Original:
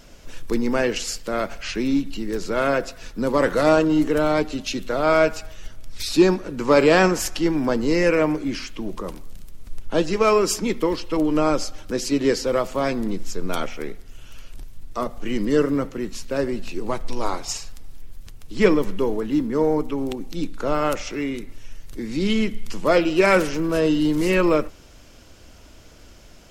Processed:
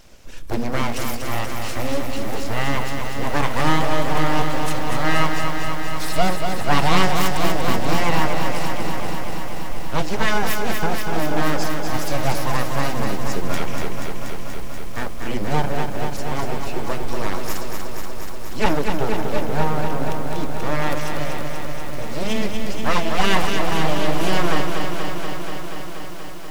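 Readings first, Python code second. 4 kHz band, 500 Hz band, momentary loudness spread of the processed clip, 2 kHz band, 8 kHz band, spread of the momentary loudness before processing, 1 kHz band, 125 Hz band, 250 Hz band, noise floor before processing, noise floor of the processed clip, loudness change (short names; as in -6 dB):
+3.5 dB, -5.0 dB, 11 LU, +2.0 dB, 0.0 dB, 13 LU, +4.0 dB, +5.5 dB, -4.0 dB, -46 dBFS, -22 dBFS, -2.0 dB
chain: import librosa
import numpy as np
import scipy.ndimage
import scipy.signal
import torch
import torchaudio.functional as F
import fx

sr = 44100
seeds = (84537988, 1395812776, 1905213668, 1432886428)

y = np.abs(x)
y = fx.echo_crushed(y, sr, ms=240, feedback_pct=80, bits=7, wet_db=-5.5)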